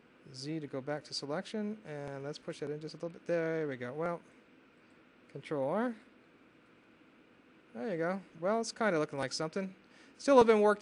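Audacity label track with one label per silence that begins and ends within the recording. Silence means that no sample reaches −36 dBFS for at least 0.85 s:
4.150000	5.350000	silence
5.910000	7.770000	silence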